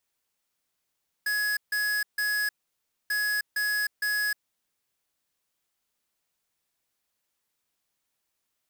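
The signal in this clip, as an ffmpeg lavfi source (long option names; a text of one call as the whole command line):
ffmpeg -f lavfi -i "aevalsrc='0.0447*(2*lt(mod(1680*t,1),0.5)-1)*clip(min(mod(mod(t,1.84),0.46),0.31-mod(mod(t,1.84),0.46))/0.005,0,1)*lt(mod(t,1.84),1.38)':duration=3.68:sample_rate=44100" out.wav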